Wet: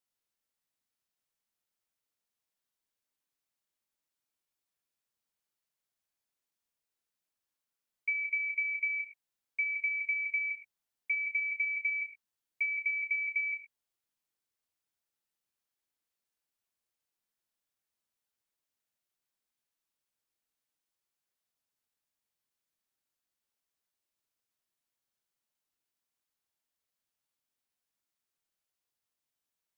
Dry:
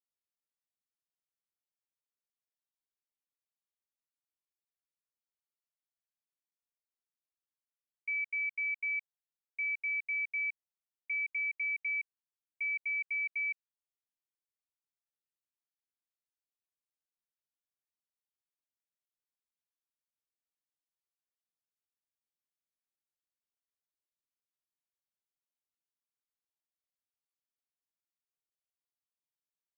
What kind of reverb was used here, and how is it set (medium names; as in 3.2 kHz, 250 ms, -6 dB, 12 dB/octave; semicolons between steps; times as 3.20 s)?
gated-style reverb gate 150 ms flat, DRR 5.5 dB; trim +5 dB